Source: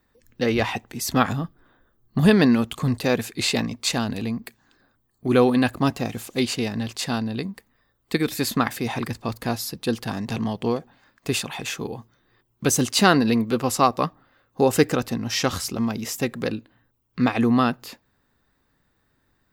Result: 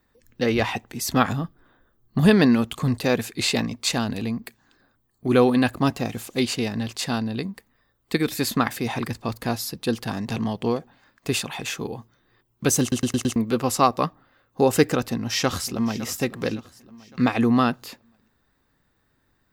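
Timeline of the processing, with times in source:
0:12.81: stutter in place 0.11 s, 5 plays
0:14.96–0:16.04: delay throw 560 ms, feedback 45%, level −16 dB

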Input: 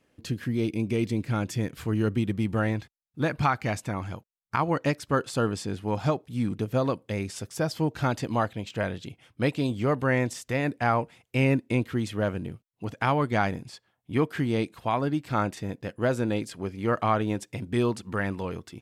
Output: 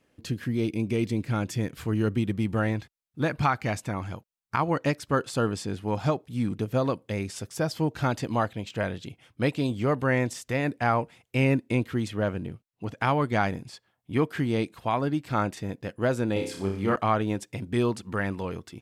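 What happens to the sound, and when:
0:12.08–0:12.98: high-shelf EQ 6,400 Hz −5.5 dB
0:16.33–0:16.96: flutter between parallel walls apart 5.3 metres, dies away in 0.49 s

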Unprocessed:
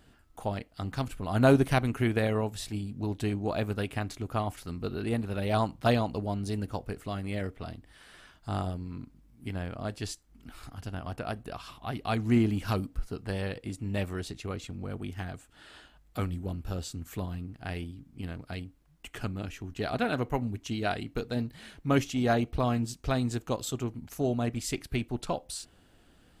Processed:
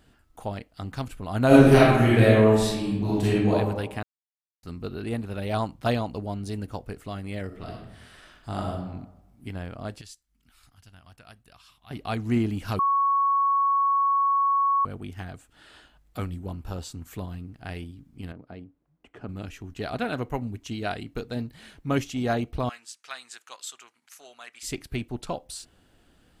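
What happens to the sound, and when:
0:01.47–0:03.52: thrown reverb, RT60 1.1 s, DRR −9 dB
0:04.03–0:04.63: silence
0:07.46–0:08.75: thrown reverb, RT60 0.96 s, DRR −0.5 dB
0:10.01–0:11.91: guitar amp tone stack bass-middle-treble 5-5-5
0:12.79–0:14.85: beep over 1,110 Hz −19 dBFS
0:16.48–0:17.06: parametric band 940 Hz +7.5 dB 0.59 octaves
0:18.32–0:19.29: resonant band-pass 380 Hz, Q 0.6
0:22.69–0:24.63: Chebyshev band-pass filter 1,500–9,900 Hz

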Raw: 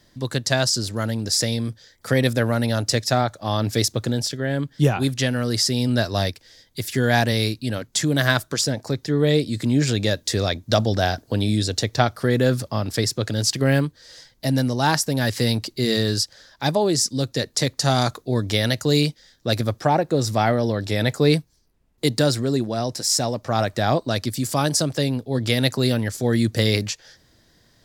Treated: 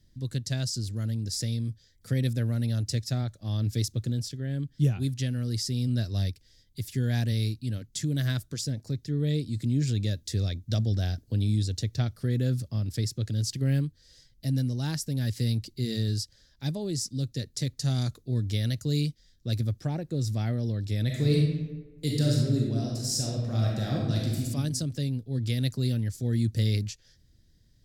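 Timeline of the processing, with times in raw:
0:21.05–0:24.43: thrown reverb, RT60 1.2 s, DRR −2.5 dB
whole clip: guitar amp tone stack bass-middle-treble 10-0-1; level +9 dB

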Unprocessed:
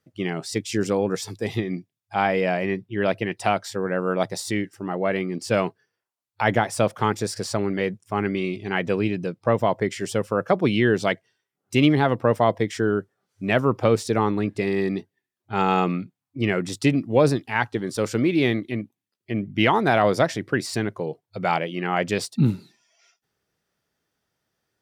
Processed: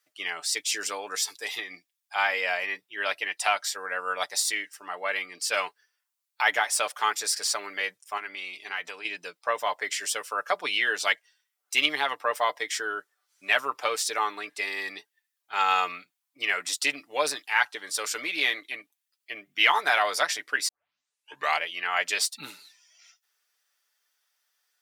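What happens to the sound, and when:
0:08.17–0:09.05: downward compressor, threshold −25 dBFS
0:20.68: tape start 0.92 s
whole clip: high-pass filter 1,000 Hz 12 dB per octave; spectral tilt +2 dB per octave; comb filter 6.8 ms, depth 53%

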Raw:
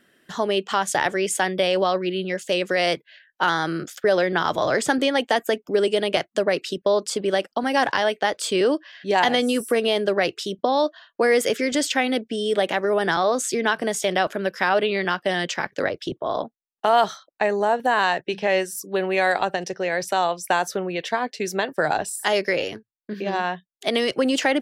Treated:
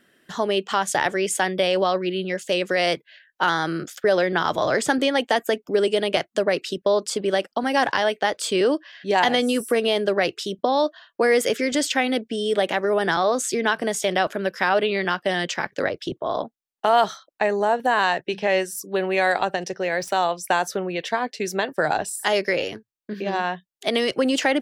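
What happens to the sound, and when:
0:19.80–0:20.32: running median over 3 samples

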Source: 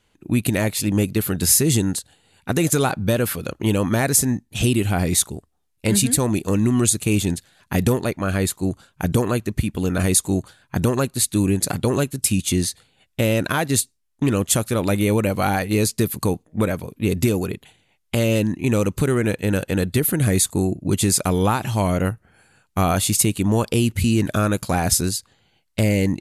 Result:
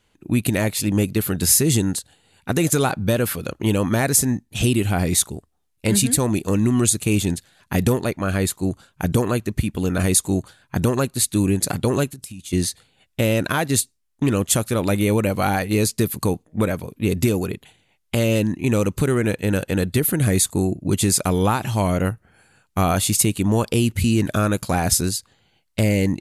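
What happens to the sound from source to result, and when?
0:12.09–0:12.53: downward compressor 10 to 1, threshold −32 dBFS

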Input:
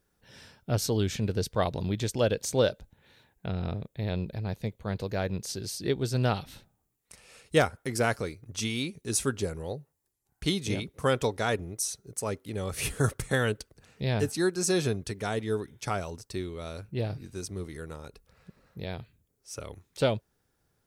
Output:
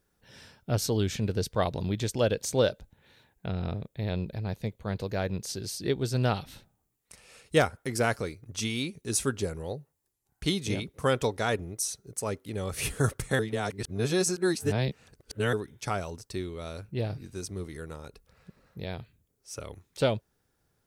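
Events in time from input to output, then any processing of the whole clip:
0:13.39–0:15.53: reverse

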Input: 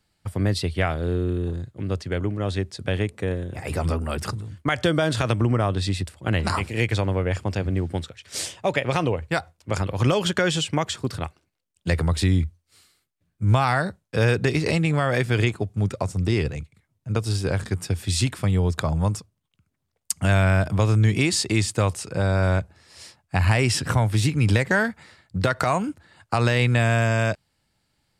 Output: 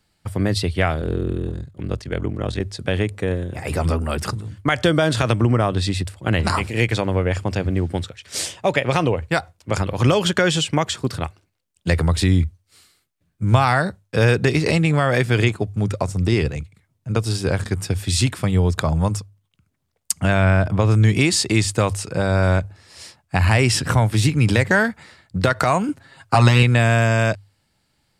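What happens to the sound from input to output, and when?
0:01.00–0:02.60: ring modulation 21 Hz
0:20.20–0:20.90: high-shelf EQ 6,400 Hz → 3,900 Hz −11.5 dB
0:25.88–0:26.63: comb filter 7.4 ms, depth 87%
whole clip: mains-hum notches 50/100 Hz; level +4 dB

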